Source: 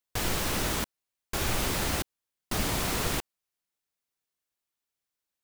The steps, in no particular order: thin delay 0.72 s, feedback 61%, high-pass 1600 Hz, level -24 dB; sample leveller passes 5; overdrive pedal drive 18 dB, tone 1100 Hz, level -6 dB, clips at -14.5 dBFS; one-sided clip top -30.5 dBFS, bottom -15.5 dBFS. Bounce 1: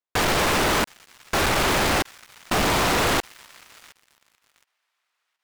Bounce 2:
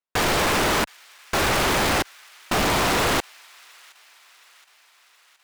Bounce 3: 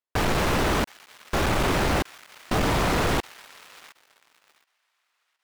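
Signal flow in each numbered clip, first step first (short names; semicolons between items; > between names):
one-sided clip > overdrive pedal > thin delay > sample leveller; overdrive pedal > one-sided clip > sample leveller > thin delay; one-sided clip > thin delay > sample leveller > overdrive pedal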